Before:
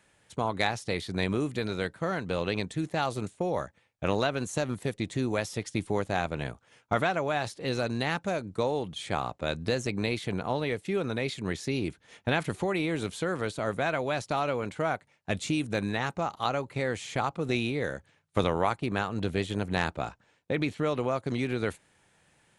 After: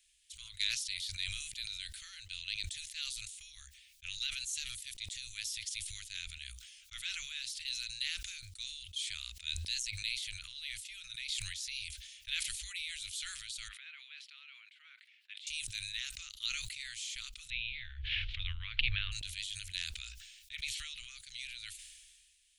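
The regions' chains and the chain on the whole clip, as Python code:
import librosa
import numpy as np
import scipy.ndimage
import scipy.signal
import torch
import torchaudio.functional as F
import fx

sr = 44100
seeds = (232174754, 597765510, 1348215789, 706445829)

y = fx.chain(x, sr, fx.highpass(hz=740.0, slope=24),
    fx.air_absorb(metres=480.0), at=(13.68, 15.47))
y = fx.chain(y, sr, fx.steep_lowpass(hz=3400.0, slope=36),
    fx.low_shelf(hz=490.0, db=12.0),
    fx.pre_swell(db_per_s=27.0), at=(17.5, 19.12))
y = scipy.signal.sosfilt(scipy.signal.cheby2(4, 70, [170.0, 810.0], 'bandstop', fs=sr, output='sos'), y)
y = fx.sustainer(y, sr, db_per_s=34.0)
y = F.gain(torch.from_numpy(y), 1.0).numpy()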